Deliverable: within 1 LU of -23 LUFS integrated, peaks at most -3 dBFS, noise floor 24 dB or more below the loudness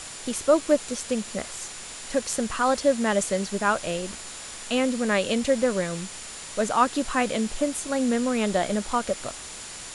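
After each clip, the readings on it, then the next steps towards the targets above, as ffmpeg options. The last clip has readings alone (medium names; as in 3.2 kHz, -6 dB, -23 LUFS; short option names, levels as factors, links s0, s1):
steady tone 7.1 kHz; tone level -44 dBFS; noise floor -39 dBFS; noise floor target -50 dBFS; loudness -25.5 LUFS; peak level -8.0 dBFS; loudness target -23.0 LUFS
-> -af "bandreject=f=7100:w=30"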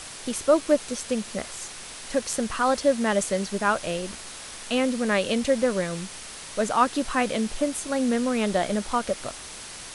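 steady tone not found; noise floor -40 dBFS; noise floor target -50 dBFS
-> -af "afftdn=nr=10:nf=-40"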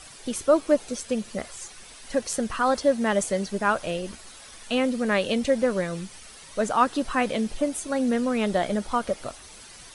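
noise floor -46 dBFS; noise floor target -50 dBFS
-> -af "afftdn=nr=6:nf=-46"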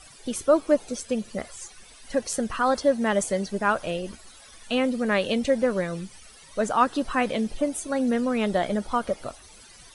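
noise floor -50 dBFS; loudness -25.5 LUFS; peak level -8.0 dBFS; loudness target -23.0 LUFS
-> -af "volume=1.33"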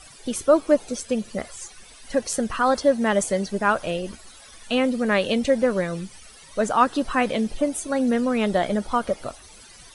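loudness -23.0 LUFS; peak level -5.5 dBFS; noise floor -47 dBFS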